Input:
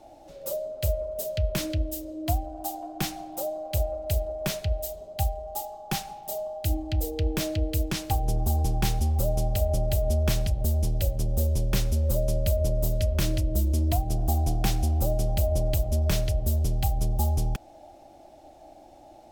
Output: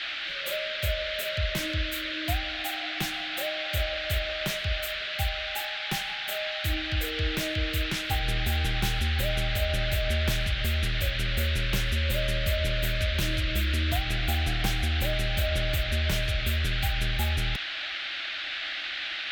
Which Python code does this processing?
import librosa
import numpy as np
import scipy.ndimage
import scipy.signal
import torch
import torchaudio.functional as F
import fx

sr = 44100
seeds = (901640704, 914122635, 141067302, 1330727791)

y = fx.cheby_harmonics(x, sr, harmonics=(3, 5), levels_db=(-14, -24), full_scale_db=-11.0)
y = fx.dmg_noise_band(y, sr, seeds[0], low_hz=1400.0, high_hz=3900.0, level_db=-34.0)